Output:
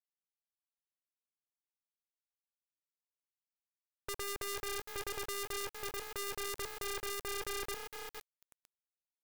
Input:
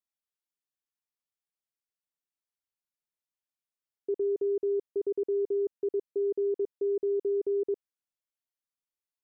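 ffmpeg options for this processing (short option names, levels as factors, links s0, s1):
-filter_complex "[0:a]asoftclip=type=tanh:threshold=0.01,highpass=510,aemphasis=mode=production:type=75fm,asplit=4[s0][s1][s2][s3];[s1]adelay=458,afreqshift=32,volume=0.133[s4];[s2]adelay=916,afreqshift=64,volume=0.0519[s5];[s3]adelay=1374,afreqshift=96,volume=0.0202[s6];[s0][s4][s5][s6]amix=inputs=4:normalize=0,acrusher=bits=7:dc=4:mix=0:aa=0.000001,alimiter=level_in=7.5:limit=0.0631:level=0:latency=1:release=11,volume=0.133,volume=7.5"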